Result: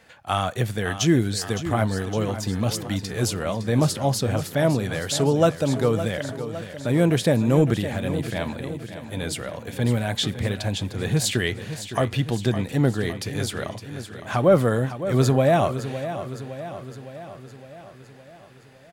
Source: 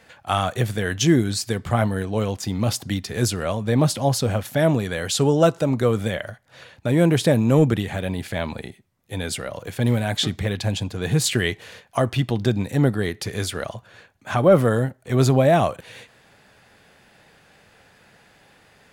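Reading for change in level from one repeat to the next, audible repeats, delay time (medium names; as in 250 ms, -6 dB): -4.5 dB, 6, 561 ms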